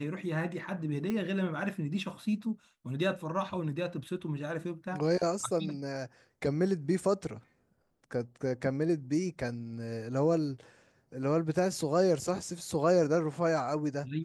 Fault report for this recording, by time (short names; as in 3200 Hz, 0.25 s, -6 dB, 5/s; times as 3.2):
1.1 pop -21 dBFS